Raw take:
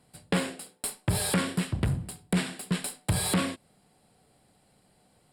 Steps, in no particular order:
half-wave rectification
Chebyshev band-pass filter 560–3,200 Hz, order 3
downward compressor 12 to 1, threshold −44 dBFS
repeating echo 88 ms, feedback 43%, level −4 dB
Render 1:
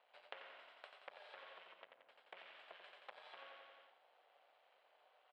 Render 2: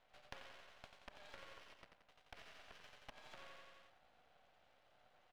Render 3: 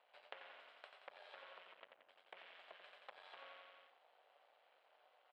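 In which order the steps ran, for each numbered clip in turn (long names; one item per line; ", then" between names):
half-wave rectification, then repeating echo, then downward compressor, then Chebyshev band-pass filter
repeating echo, then downward compressor, then Chebyshev band-pass filter, then half-wave rectification
repeating echo, then downward compressor, then half-wave rectification, then Chebyshev band-pass filter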